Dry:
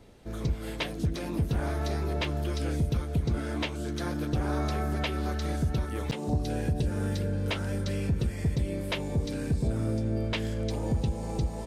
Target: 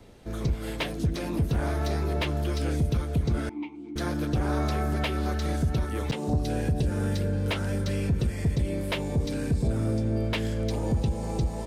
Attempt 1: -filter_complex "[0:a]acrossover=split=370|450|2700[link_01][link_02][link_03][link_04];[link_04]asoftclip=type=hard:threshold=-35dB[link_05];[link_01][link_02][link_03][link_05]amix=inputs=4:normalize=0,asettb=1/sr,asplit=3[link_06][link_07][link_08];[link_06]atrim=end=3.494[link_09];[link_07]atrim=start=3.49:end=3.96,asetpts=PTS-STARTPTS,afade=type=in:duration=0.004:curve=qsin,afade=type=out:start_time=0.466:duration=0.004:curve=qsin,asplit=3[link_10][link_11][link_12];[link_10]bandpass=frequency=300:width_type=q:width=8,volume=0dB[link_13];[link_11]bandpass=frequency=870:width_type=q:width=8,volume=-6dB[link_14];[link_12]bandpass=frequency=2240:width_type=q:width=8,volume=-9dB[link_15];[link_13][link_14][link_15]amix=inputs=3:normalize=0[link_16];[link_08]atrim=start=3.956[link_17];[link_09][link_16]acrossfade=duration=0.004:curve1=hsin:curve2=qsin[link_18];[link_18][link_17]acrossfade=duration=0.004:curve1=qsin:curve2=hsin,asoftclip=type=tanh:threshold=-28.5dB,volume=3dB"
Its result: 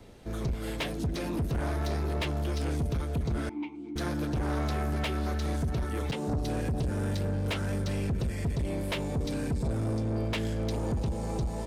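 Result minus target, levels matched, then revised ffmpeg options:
soft clipping: distortion +15 dB
-filter_complex "[0:a]acrossover=split=370|450|2700[link_01][link_02][link_03][link_04];[link_04]asoftclip=type=hard:threshold=-35dB[link_05];[link_01][link_02][link_03][link_05]amix=inputs=4:normalize=0,asettb=1/sr,asplit=3[link_06][link_07][link_08];[link_06]atrim=end=3.494[link_09];[link_07]atrim=start=3.49:end=3.96,asetpts=PTS-STARTPTS,afade=type=in:duration=0.004:curve=qsin,afade=type=out:start_time=0.466:duration=0.004:curve=qsin,asplit=3[link_10][link_11][link_12];[link_10]bandpass=frequency=300:width_type=q:width=8,volume=0dB[link_13];[link_11]bandpass=frequency=870:width_type=q:width=8,volume=-6dB[link_14];[link_12]bandpass=frequency=2240:width_type=q:width=8,volume=-9dB[link_15];[link_13][link_14][link_15]amix=inputs=3:normalize=0[link_16];[link_08]atrim=start=3.956[link_17];[link_09][link_16]acrossfade=duration=0.004:curve1=hsin:curve2=qsin[link_18];[link_18][link_17]acrossfade=duration=0.004:curve1=qsin:curve2=hsin,asoftclip=type=tanh:threshold=-17.5dB,volume=3dB"

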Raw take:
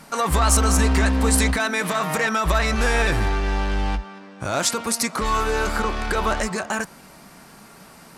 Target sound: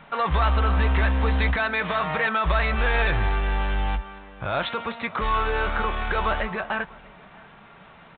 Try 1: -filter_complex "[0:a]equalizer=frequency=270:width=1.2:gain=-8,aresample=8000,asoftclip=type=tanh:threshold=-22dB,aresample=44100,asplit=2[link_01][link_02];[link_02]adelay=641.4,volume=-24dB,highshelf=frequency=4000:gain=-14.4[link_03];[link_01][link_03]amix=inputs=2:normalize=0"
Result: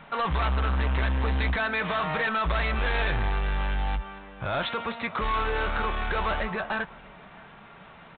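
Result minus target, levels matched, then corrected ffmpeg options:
soft clipping: distortion +12 dB
-filter_complex "[0:a]equalizer=frequency=270:width=1.2:gain=-8,aresample=8000,asoftclip=type=tanh:threshold=-12dB,aresample=44100,asplit=2[link_01][link_02];[link_02]adelay=641.4,volume=-24dB,highshelf=frequency=4000:gain=-14.4[link_03];[link_01][link_03]amix=inputs=2:normalize=0"

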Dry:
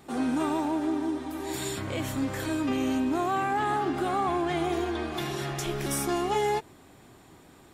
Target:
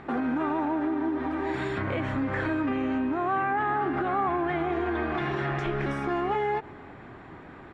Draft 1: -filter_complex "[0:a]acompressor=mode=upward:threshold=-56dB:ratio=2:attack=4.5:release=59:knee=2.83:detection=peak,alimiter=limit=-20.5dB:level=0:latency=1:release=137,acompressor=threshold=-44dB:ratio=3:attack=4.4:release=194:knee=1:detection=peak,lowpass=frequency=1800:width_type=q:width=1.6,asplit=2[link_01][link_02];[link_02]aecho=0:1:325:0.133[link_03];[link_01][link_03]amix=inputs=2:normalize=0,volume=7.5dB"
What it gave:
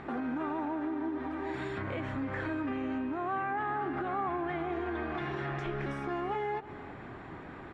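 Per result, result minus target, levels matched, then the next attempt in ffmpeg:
downward compressor: peak gain reduction +6.5 dB; echo-to-direct +8.5 dB
-filter_complex "[0:a]acompressor=mode=upward:threshold=-56dB:ratio=2:attack=4.5:release=59:knee=2.83:detection=peak,alimiter=limit=-20.5dB:level=0:latency=1:release=137,acompressor=threshold=-34dB:ratio=3:attack=4.4:release=194:knee=1:detection=peak,lowpass=frequency=1800:width_type=q:width=1.6,asplit=2[link_01][link_02];[link_02]aecho=0:1:325:0.133[link_03];[link_01][link_03]amix=inputs=2:normalize=0,volume=7.5dB"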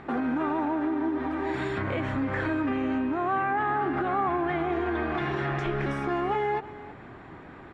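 echo-to-direct +8.5 dB
-filter_complex "[0:a]acompressor=mode=upward:threshold=-56dB:ratio=2:attack=4.5:release=59:knee=2.83:detection=peak,alimiter=limit=-20.5dB:level=0:latency=1:release=137,acompressor=threshold=-34dB:ratio=3:attack=4.4:release=194:knee=1:detection=peak,lowpass=frequency=1800:width_type=q:width=1.6,asplit=2[link_01][link_02];[link_02]aecho=0:1:325:0.0501[link_03];[link_01][link_03]amix=inputs=2:normalize=0,volume=7.5dB"

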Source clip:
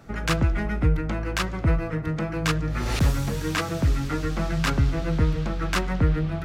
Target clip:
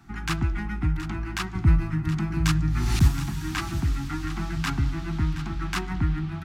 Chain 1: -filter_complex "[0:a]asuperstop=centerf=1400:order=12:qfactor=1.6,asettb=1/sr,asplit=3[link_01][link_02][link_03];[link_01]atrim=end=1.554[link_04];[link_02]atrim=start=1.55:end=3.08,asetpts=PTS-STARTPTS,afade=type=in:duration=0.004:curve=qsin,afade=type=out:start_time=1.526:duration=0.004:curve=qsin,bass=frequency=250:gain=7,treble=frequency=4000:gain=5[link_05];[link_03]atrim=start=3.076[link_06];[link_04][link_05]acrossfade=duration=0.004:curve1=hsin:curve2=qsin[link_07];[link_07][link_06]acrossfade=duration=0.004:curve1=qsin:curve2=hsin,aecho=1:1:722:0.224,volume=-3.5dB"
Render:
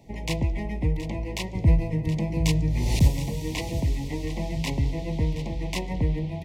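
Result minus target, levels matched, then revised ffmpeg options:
500 Hz band +8.0 dB
-filter_complex "[0:a]asuperstop=centerf=520:order=12:qfactor=1.6,asettb=1/sr,asplit=3[link_01][link_02][link_03];[link_01]atrim=end=1.554[link_04];[link_02]atrim=start=1.55:end=3.08,asetpts=PTS-STARTPTS,afade=type=in:duration=0.004:curve=qsin,afade=type=out:start_time=1.526:duration=0.004:curve=qsin,bass=frequency=250:gain=7,treble=frequency=4000:gain=5[link_05];[link_03]atrim=start=3.076[link_06];[link_04][link_05]acrossfade=duration=0.004:curve1=hsin:curve2=qsin[link_07];[link_07][link_06]acrossfade=duration=0.004:curve1=qsin:curve2=hsin,aecho=1:1:722:0.224,volume=-3.5dB"

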